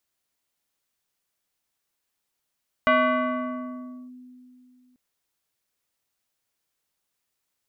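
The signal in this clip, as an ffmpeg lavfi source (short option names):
-f lavfi -i "aevalsrc='0.188*pow(10,-3*t/2.85)*sin(2*PI*251*t+1.9*clip(1-t/1.24,0,1)*sin(2*PI*3.51*251*t))':d=2.09:s=44100"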